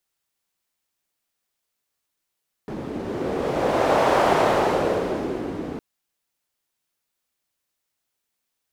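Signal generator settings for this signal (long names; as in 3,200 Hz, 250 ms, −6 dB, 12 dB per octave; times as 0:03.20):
wind from filtered noise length 3.11 s, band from 300 Hz, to 690 Hz, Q 1.7, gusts 1, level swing 12.5 dB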